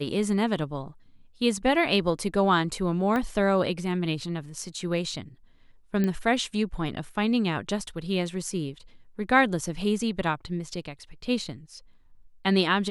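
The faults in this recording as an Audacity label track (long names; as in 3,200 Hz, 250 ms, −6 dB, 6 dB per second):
3.160000	3.160000	click −16 dBFS
6.040000	6.040000	click −15 dBFS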